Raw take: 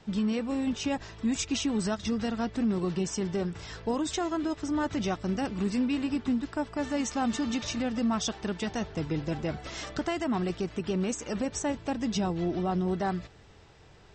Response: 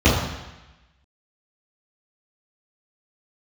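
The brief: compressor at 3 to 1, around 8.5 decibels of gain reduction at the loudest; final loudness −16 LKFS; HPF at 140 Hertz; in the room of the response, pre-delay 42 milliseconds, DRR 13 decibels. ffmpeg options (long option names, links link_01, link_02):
-filter_complex "[0:a]highpass=140,acompressor=threshold=-37dB:ratio=3,asplit=2[link_01][link_02];[1:a]atrim=start_sample=2205,adelay=42[link_03];[link_02][link_03]afir=irnorm=-1:irlink=0,volume=-36dB[link_04];[link_01][link_04]amix=inputs=2:normalize=0,volume=21.5dB"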